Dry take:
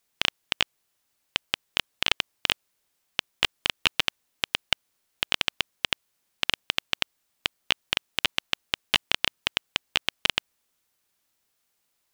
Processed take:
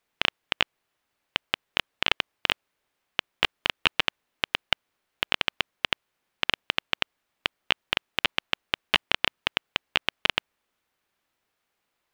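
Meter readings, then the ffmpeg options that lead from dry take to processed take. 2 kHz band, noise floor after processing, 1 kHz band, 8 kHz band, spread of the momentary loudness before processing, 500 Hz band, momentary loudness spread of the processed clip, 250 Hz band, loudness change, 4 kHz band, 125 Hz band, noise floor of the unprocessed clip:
+1.5 dB, −80 dBFS, +3.0 dB, −8.5 dB, 8 LU, +3.0 dB, 8 LU, +1.5 dB, 0.0 dB, −1.0 dB, +0.5 dB, −75 dBFS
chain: -af "bass=frequency=250:gain=-3,treble=frequency=4000:gain=-13,volume=3dB"

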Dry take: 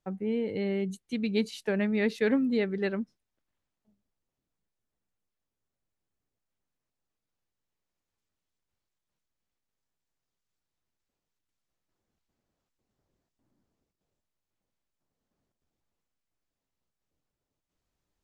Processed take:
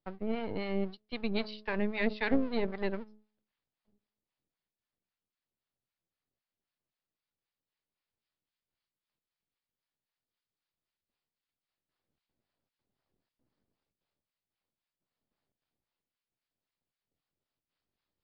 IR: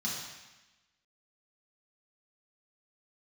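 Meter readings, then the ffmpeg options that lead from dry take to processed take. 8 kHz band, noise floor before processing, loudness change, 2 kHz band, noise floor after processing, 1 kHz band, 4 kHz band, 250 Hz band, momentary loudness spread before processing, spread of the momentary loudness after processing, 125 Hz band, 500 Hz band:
can't be measured, below −85 dBFS, −4.5 dB, −1.5 dB, below −85 dBFS, +4.0 dB, −1.5 dB, −5.5 dB, 7 LU, 8 LU, −5.0 dB, −5.0 dB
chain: -filter_complex "[0:a]highpass=66,bandreject=frequency=106.5:width_type=h:width=4,bandreject=frequency=213:width_type=h:width=4,bandreject=frequency=319.5:width_type=h:width=4,bandreject=frequency=426:width_type=h:width=4,acrossover=split=1600[link_01][link_02];[link_01]aeval=exprs='max(val(0),0)':channel_layout=same[link_03];[link_03][link_02]amix=inputs=2:normalize=0,aresample=11025,aresample=44100,acrossover=split=690[link_04][link_05];[link_04]aeval=exprs='val(0)*(1-0.7/2+0.7/2*cos(2*PI*3.8*n/s))':channel_layout=same[link_06];[link_05]aeval=exprs='val(0)*(1-0.7/2-0.7/2*cos(2*PI*3.8*n/s))':channel_layout=same[link_07];[link_06][link_07]amix=inputs=2:normalize=0,volume=2.5dB"

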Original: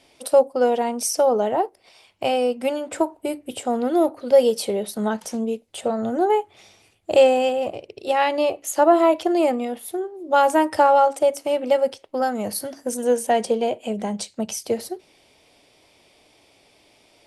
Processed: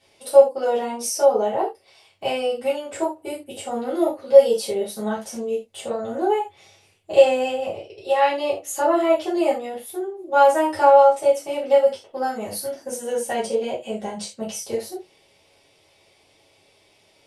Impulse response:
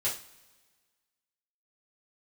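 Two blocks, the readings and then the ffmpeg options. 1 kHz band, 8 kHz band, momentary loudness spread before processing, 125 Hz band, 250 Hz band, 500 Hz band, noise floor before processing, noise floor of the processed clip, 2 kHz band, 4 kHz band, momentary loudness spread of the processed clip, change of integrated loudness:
−0.5 dB, −1.5 dB, 12 LU, can't be measured, −4.0 dB, +1.0 dB, −58 dBFS, −59 dBFS, −0.5 dB, −1.0 dB, 16 LU, +0.5 dB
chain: -filter_complex "[1:a]atrim=start_sample=2205,atrim=end_sample=4410[link_01];[0:a][link_01]afir=irnorm=-1:irlink=0,volume=-7dB"

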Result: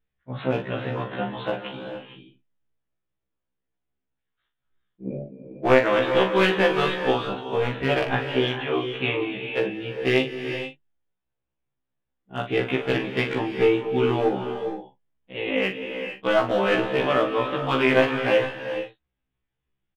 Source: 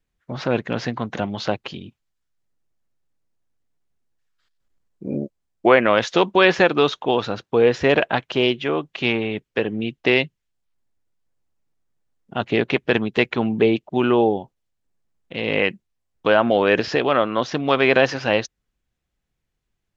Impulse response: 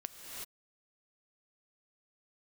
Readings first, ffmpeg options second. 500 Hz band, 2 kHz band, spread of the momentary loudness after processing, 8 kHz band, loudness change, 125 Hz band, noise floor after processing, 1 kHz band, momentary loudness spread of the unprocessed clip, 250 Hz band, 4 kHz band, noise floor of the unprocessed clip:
−3.0 dB, −3.5 dB, 15 LU, can't be measured, −3.5 dB, −1.0 dB, −82 dBFS, −3.5 dB, 13 LU, −4.0 dB, −3.5 dB, −78 dBFS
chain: -filter_complex "[0:a]aresample=8000,aresample=44100,aeval=exprs='clip(val(0),-1,0.2)':channel_layout=same,asplit=2[link_01][link_02];[link_02]adelay=42,volume=-8dB[link_03];[link_01][link_03]amix=inputs=2:normalize=0,asplit=2[link_04][link_05];[1:a]atrim=start_sample=2205,asetrate=36162,aresample=44100[link_06];[link_05][link_06]afir=irnorm=-1:irlink=0,volume=0.5dB[link_07];[link_04][link_07]amix=inputs=2:normalize=0,afftfilt=real='re*1.73*eq(mod(b,3),0)':imag='im*1.73*eq(mod(b,3),0)':win_size=2048:overlap=0.75,volume=-7dB"

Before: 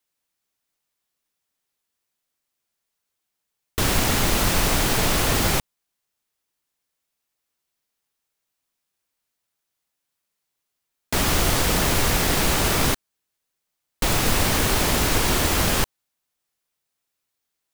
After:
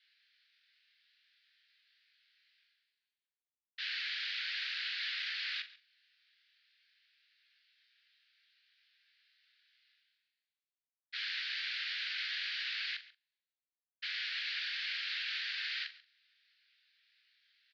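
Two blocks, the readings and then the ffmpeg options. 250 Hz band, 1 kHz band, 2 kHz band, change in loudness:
below −40 dB, −31.5 dB, −11.0 dB, −16.0 dB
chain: -filter_complex "[0:a]agate=range=-33dB:threshold=-14dB:ratio=3:detection=peak,alimiter=limit=-20.5dB:level=0:latency=1,areverse,acompressor=mode=upward:threshold=-35dB:ratio=2.5,areverse,flanger=delay=19.5:depth=6.9:speed=0.55,aeval=exprs='0.0178*(abs(mod(val(0)/0.0178+3,4)-2)-1)':channel_layout=same,asuperpass=centerf=2700:order=12:qfactor=0.87,asplit=2[link_01][link_02];[link_02]adelay=42,volume=-11dB[link_03];[link_01][link_03]amix=inputs=2:normalize=0,aecho=1:1:138:0.112,volume=7.5dB"

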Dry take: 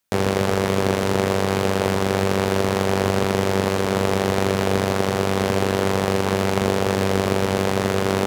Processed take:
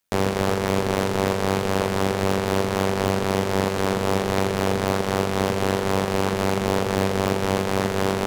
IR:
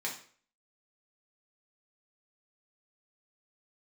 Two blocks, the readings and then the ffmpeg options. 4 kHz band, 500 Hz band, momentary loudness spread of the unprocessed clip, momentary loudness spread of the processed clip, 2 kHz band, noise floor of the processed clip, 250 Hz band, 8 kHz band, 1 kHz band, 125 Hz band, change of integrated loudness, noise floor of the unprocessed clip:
−2.0 dB, −2.5 dB, 1 LU, 1 LU, −2.0 dB, −26 dBFS, −2.0 dB, −2.0 dB, −1.0 dB, −2.5 dB, −2.0 dB, −23 dBFS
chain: -af "tremolo=f=93:d=0.571,aeval=exprs='0.668*(cos(1*acos(clip(val(0)/0.668,-1,1)))-cos(1*PI/2))+0.0668*(cos(5*acos(clip(val(0)/0.668,-1,1)))-cos(5*PI/2))+0.075*(cos(6*acos(clip(val(0)/0.668,-1,1)))-cos(6*PI/2))':channel_layout=same,volume=-2.5dB"

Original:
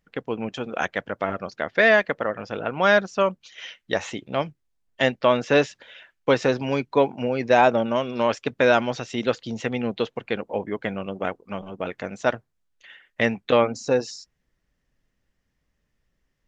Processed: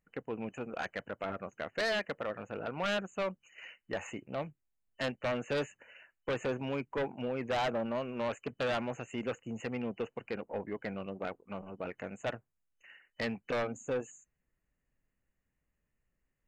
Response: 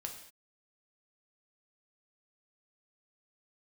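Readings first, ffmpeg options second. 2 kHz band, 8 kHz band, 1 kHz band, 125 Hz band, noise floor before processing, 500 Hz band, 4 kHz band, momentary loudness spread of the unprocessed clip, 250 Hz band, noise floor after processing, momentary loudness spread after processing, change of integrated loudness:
−14.5 dB, can't be measured, −14.5 dB, −10.5 dB, −75 dBFS, −13.5 dB, −11.0 dB, 13 LU, −11.5 dB, −84 dBFS, 9 LU, −13.5 dB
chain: -af "afftfilt=real='re*(1-between(b*sr/4096,3000,6300))':imag='im*(1-between(b*sr/4096,3000,6300))':win_size=4096:overlap=0.75,aeval=exprs='0.211*(abs(mod(val(0)/0.211+3,4)-2)-1)':channel_layout=same,aeval=exprs='(tanh(8.91*val(0)+0.15)-tanh(0.15))/8.91':channel_layout=same,volume=-8.5dB"

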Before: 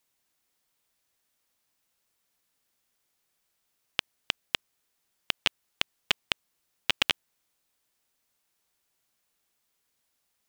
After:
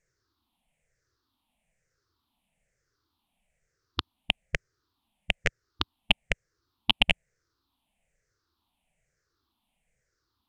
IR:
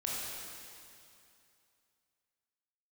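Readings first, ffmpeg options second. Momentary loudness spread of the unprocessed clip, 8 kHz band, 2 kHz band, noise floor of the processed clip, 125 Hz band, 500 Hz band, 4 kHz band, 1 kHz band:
7 LU, −6.0 dB, +3.0 dB, −81 dBFS, +11.5 dB, +4.5 dB, +1.0 dB, +2.5 dB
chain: -af "afftfilt=real='re*pow(10,20/40*sin(2*PI*(0.53*log(max(b,1)*sr/1024/100)/log(2)-(-1.1)*(pts-256)/sr)))':imag='im*pow(10,20/40*sin(2*PI*(0.53*log(max(b,1)*sr/1024/100)/log(2)-(-1.1)*(pts-256)/sr)))':win_size=1024:overlap=0.75,aemphasis=mode=reproduction:type=bsi,volume=-1.5dB"

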